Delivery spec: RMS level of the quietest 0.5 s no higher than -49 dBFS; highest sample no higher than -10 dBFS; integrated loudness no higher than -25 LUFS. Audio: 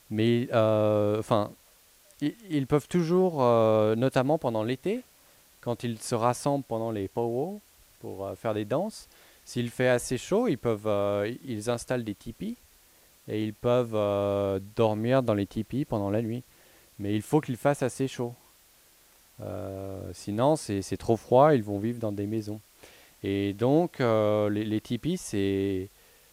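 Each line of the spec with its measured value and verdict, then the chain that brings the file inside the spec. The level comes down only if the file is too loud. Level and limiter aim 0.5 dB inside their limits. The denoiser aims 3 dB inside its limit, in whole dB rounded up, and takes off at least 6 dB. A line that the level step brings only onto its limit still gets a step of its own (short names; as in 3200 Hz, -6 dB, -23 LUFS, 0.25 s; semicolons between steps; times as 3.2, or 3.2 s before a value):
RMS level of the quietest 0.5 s -59 dBFS: OK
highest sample -7.5 dBFS: fail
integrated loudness -28.0 LUFS: OK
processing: limiter -10.5 dBFS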